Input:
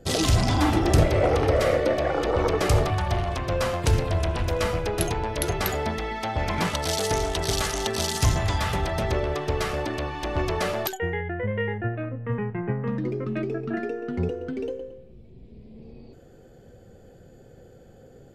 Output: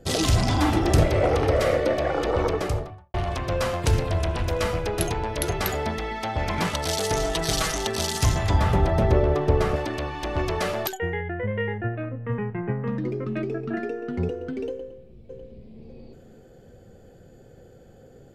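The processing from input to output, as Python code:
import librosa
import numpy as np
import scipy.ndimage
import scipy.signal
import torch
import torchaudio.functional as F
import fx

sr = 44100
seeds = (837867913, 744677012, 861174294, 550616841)

y = fx.studio_fade_out(x, sr, start_s=2.35, length_s=0.79)
y = fx.comb(y, sr, ms=6.2, depth=0.69, at=(7.16, 7.77))
y = fx.tilt_shelf(y, sr, db=7.0, hz=1400.0, at=(8.5, 9.76))
y = fx.echo_throw(y, sr, start_s=14.69, length_s=1.1, ms=600, feedback_pct=30, wet_db=-7.5)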